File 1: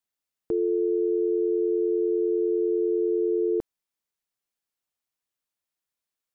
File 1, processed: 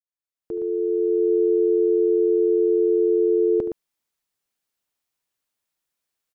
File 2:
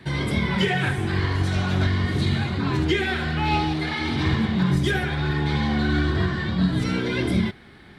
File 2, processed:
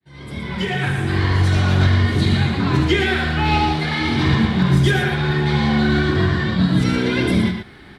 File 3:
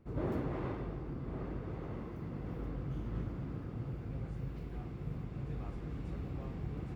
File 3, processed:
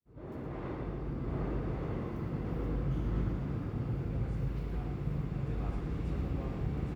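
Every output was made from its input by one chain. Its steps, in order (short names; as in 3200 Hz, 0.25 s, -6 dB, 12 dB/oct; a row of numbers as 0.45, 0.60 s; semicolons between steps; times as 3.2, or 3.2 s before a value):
opening faded in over 1.33 s; on a send: loudspeakers at several distances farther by 25 m -12 dB, 40 m -7 dB; on the sum: gain +4.5 dB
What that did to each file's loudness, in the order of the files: +5.0, +5.5, +4.5 LU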